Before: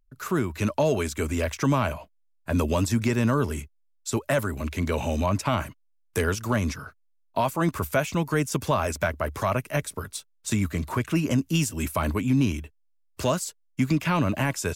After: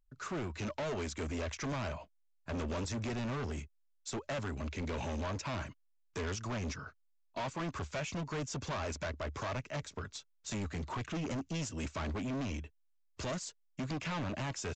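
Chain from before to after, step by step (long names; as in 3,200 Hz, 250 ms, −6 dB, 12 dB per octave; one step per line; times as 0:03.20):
hard clipping −28 dBFS, distortion −5 dB
downsampling to 16,000 Hz
level −6.5 dB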